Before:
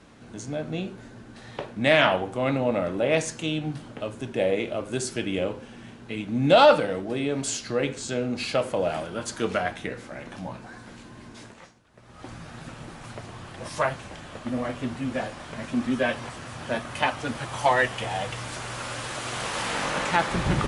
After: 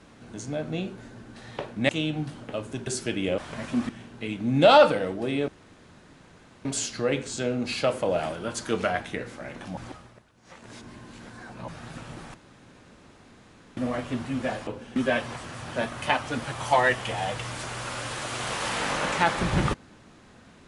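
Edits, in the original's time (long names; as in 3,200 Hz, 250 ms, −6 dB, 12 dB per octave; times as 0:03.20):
0:01.89–0:03.37: remove
0:04.35–0:04.97: remove
0:05.48–0:05.77: swap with 0:15.38–0:15.89
0:07.36: splice in room tone 1.17 s
0:10.48–0:12.39: reverse
0:13.05–0:14.48: fill with room tone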